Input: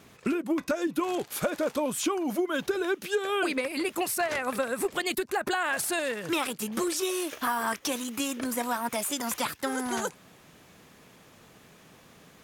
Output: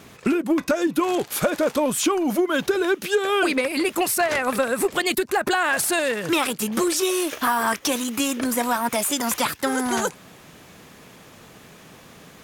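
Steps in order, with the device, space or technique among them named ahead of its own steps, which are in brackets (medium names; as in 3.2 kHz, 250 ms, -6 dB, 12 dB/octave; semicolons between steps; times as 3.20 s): parallel distortion (in parallel at -11 dB: hard clipper -31.5 dBFS, distortion -7 dB); on the sum: trim +6 dB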